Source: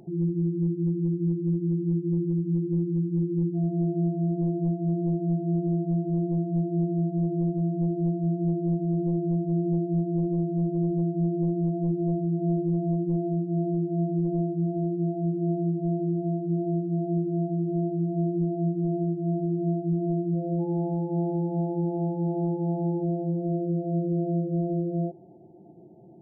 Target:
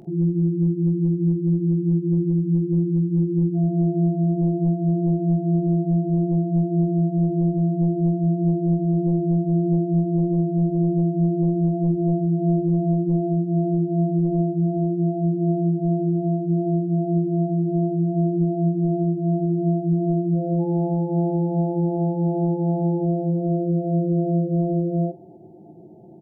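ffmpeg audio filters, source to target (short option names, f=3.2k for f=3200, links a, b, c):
-af "aecho=1:1:19|46:0.299|0.2,acontrast=26"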